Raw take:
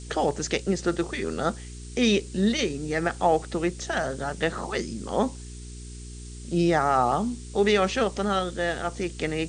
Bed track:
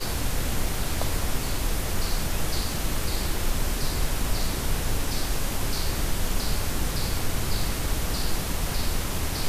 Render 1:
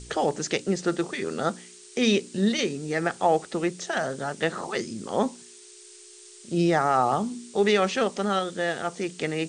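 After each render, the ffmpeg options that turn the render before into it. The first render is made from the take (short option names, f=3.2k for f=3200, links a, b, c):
-af "bandreject=f=60:t=h:w=4,bandreject=f=120:t=h:w=4,bandreject=f=180:t=h:w=4,bandreject=f=240:t=h:w=4,bandreject=f=300:t=h:w=4"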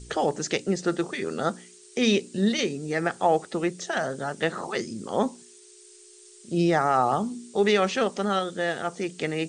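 -af "afftdn=nr=6:nf=-49"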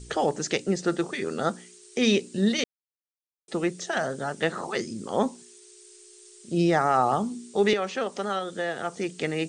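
-filter_complex "[0:a]asettb=1/sr,asplit=3[a][b][c];[a]atrim=end=7.734[d];[b]atrim=start=7.73:end=8.97,asetpts=PTS-STARTPTS,afade=t=in:d=0.004:c=qsin,afade=t=out:st=1.236:d=0.004:c=qsin,acrossover=split=330|1700[e][f][g];[e]acompressor=threshold=-40dB:ratio=4[h];[f]acompressor=threshold=-26dB:ratio=4[i];[g]acompressor=threshold=-38dB:ratio=4[j];[h][i][j]amix=inputs=3:normalize=0[k];[c]atrim=start=8.966[l];[d][k]acrossfade=d=0.004:c1=hsin:c2=qsin[m];[m][l]acrossfade=d=0.004:c1=qsin:c2=hsin,asplit=3[n][o][p];[n]atrim=end=2.64,asetpts=PTS-STARTPTS,afade=t=out:st=2.636:d=0.004:c=hsin[q];[o]atrim=start=2.64:end=3.48,asetpts=PTS-STARTPTS,volume=0[r];[p]atrim=start=3.48,asetpts=PTS-STARTPTS,afade=t=in:d=0.004:c=hsin[s];[q][r][s]concat=n=3:v=0:a=1"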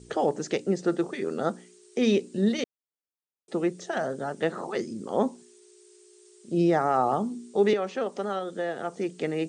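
-af "highpass=f=460:p=1,tiltshelf=f=770:g=8"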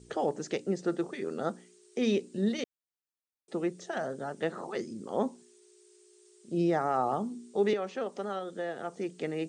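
-af "volume=-5dB"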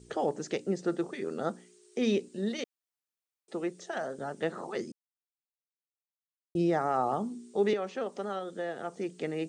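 -filter_complex "[0:a]asettb=1/sr,asplit=3[a][b][c];[a]atrim=end=2.284[d];[b]atrim=start=2.28:end=4.19,asetpts=PTS-STARTPTS,afade=t=in:d=0.004:c=qsin,afade=t=out:st=1.906:d=0.004:c=qsin,lowshelf=f=190:g=-9.5[e];[c]atrim=start=4.186[f];[d][e]acrossfade=d=0.004:c1=hsin:c2=qsin[g];[g][f]acrossfade=d=0.004:c1=qsin:c2=hsin,asplit=3[h][i][j];[h]atrim=end=4.92,asetpts=PTS-STARTPTS,afade=t=out:st=4.916:d=0.004:c=hsin[k];[i]atrim=start=4.92:end=6.55,asetpts=PTS-STARTPTS,volume=0[l];[j]atrim=start=6.55,asetpts=PTS-STARTPTS,afade=t=in:d=0.004:c=hsin[m];[k][l][m]concat=n=3:v=0:a=1"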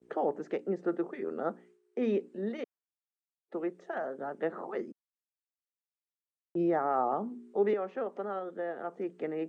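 -filter_complex "[0:a]agate=range=-33dB:threshold=-52dB:ratio=3:detection=peak,acrossover=split=190 2100:gain=0.0708 1 0.0631[a][b][c];[a][b][c]amix=inputs=3:normalize=0"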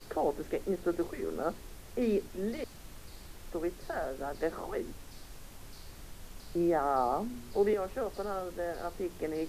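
-filter_complex "[1:a]volume=-22dB[a];[0:a][a]amix=inputs=2:normalize=0"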